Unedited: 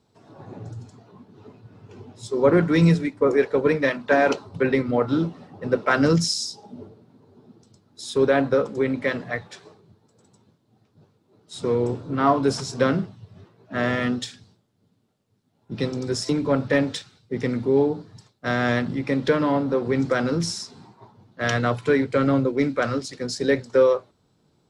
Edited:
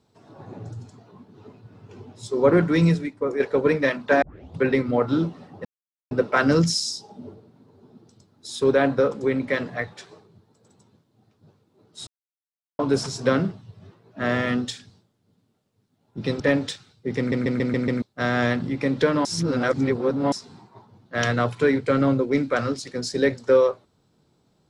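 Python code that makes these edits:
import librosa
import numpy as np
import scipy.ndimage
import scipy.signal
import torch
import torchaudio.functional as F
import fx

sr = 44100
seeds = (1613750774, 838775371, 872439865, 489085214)

y = fx.edit(x, sr, fx.fade_out_to(start_s=2.61, length_s=0.79, floor_db=-8.0),
    fx.tape_start(start_s=4.22, length_s=0.35),
    fx.insert_silence(at_s=5.65, length_s=0.46),
    fx.silence(start_s=11.61, length_s=0.72),
    fx.cut(start_s=15.94, length_s=0.72),
    fx.stutter_over(start_s=17.44, slice_s=0.14, count=6),
    fx.reverse_span(start_s=19.51, length_s=1.07), tone=tone)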